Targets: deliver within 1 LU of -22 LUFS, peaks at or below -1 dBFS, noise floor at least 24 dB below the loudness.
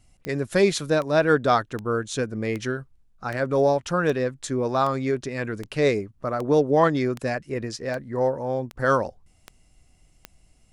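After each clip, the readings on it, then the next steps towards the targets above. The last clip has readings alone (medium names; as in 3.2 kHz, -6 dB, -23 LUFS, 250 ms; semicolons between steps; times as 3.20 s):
clicks found 14; loudness -24.0 LUFS; peak level -6.5 dBFS; loudness target -22.0 LUFS
-> de-click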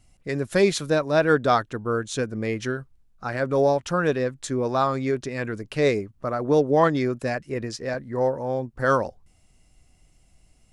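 clicks found 0; loudness -24.5 LUFS; peak level -6.5 dBFS; loudness target -22.0 LUFS
-> trim +2.5 dB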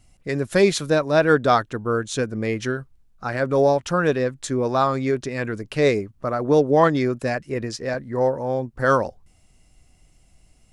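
loudness -22.0 LUFS; peak level -4.0 dBFS; noise floor -58 dBFS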